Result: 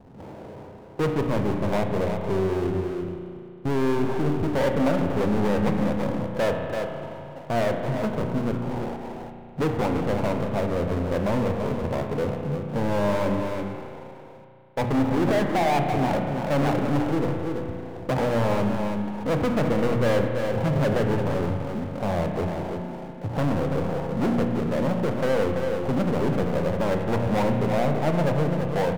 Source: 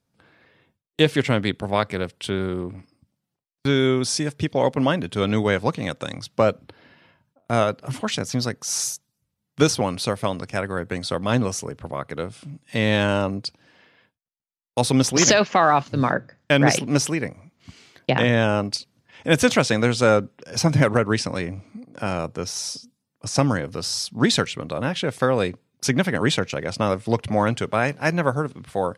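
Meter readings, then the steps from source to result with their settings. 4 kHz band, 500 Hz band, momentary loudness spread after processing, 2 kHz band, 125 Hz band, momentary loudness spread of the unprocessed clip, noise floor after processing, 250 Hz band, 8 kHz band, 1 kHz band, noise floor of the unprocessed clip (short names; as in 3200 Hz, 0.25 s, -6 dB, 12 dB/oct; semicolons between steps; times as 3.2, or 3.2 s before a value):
-13.0 dB, -1.0 dB, 11 LU, -8.0 dB, -1.0 dB, 12 LU, -42 dBFS, -1.0 dB, -19.5 dB, -2.5 dB, -80 dBFS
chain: CVSD 64 kbps; steep low-pass 960 Hz 96 dB/oct; notches 60/120/180/240/300 Hz; soft clip -21.5 dBFS, distortion -8 dB; on a send: echo 0.335 s -11.5 dB; on the sum: power-law curve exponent 0.5; spring tank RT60 2.6 s, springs 34 ms, chirp 80 ms, DRR 4.5 dB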